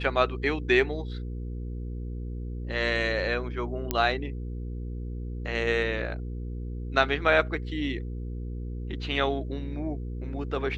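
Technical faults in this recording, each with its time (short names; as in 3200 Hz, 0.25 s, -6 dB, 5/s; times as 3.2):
hum 60 Hz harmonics 8 -34 dBFS
3.91 pop -11 dBFS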